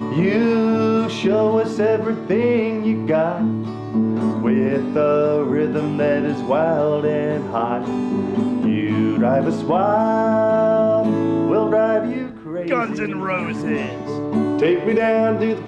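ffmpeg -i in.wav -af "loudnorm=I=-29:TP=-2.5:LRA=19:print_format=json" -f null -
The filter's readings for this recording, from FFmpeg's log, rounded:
"input_i" : "-19.3",
"input_tp" : "-6.5",
"input_lra" : "2.4",
"input_thresh" : "-29.3",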